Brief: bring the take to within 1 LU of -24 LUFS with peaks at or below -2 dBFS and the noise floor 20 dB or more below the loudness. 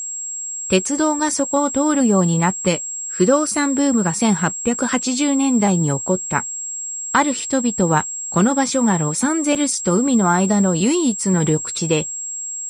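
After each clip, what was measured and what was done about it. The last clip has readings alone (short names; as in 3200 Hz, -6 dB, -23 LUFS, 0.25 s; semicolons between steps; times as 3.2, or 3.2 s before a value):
dropouts 1; longest dropout 5.2 ms; steady tone 7600 Hz; tone level -25 dBFS; loudness -18.0 LUFS; peak -3.0 dBFS; loudness target -24.0 LUFS
-> interpolate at 9.55, 5.2 ms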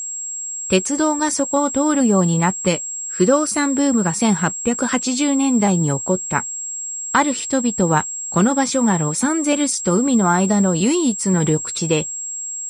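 dropouts 0; steady tone 7600 Hz; tone level -25 dBFS
-> notch 7600 Hz, Q 30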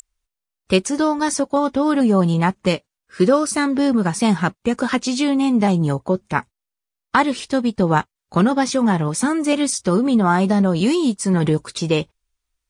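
steady tone none; loudness -19.0 LUFS; peak -3.0 dBFS; loudness target -24.0 LUFS
-> gain -5 dB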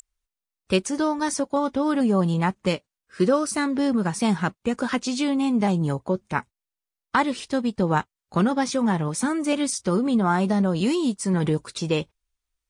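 loudness -24.0 LUFS; peak -8.0 dBFS; noise floor -89 dBFS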